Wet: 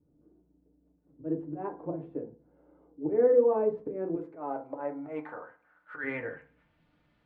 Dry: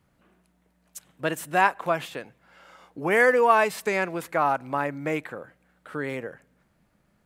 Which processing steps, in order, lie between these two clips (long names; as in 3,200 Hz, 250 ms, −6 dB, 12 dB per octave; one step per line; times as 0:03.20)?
0:04.15–0:06.04: spectral tilt +4.5 dB per octave
volume swells 135 ms
low-pass filter sweep 380 Hz → 3,400 Hz, 0:04.22–0:06.84
feedback delay network reverb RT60 0.34 s, low-frequency decay 1.2×, high-frequency decay 0.45×, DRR 1.5 dB
level −6 dB